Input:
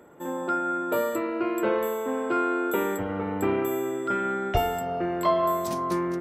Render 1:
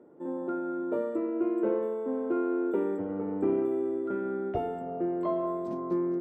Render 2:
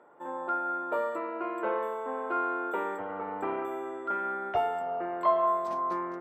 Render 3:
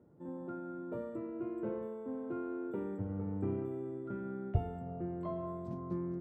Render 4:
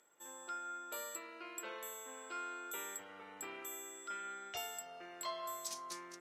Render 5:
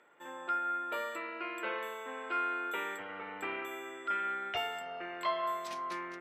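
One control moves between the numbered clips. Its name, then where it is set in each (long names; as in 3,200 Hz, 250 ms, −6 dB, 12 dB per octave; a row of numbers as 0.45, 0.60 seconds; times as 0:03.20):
resonant band-pass, frequency: 320, 940, 110, 6,400, 2,400 Hertz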